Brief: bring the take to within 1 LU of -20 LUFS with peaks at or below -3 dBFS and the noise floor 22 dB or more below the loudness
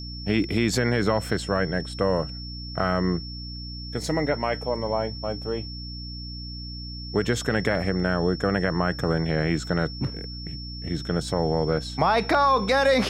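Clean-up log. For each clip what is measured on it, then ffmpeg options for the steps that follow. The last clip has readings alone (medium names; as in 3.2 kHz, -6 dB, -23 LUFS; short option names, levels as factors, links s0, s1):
hum 60 Hz; highest harmonic 300 Hz; hum level -35 dBFS; steady tone 5.4 kHz; tone level -38 dBFS; loudness -26.0 LUFS; peak level -7.0 dBFS; loudness target -20.0 LUFS
-> -af "bandreject=f=60:t=h:w=4,bandreject=f=120:t=h:w=4,bandreject=f=180:t=h:w=4,bandreject=f=240:t=h:w=4,bandreject=f=300:t=h:w=4"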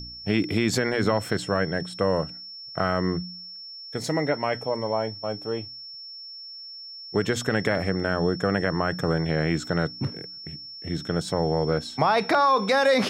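hum not found; steady tone 5.4 kHz; tone level -38 dBFS
-> -af "bandreject=f=5400:w=30"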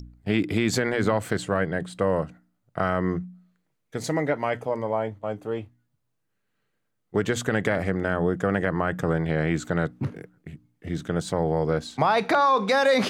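steady tone not found; loudness -25.5 LUFS; peak level -7.0 dBFS; loudness target -20.0 LUFS
-> -af "volume=1.88,alimiter=limit=0.708:level=0:latency=1"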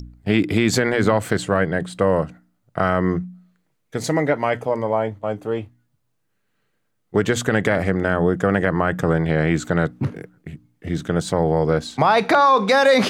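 loudness -20.0 LUFS; peak level -3.0 dBFS; noise floor -70 dBFS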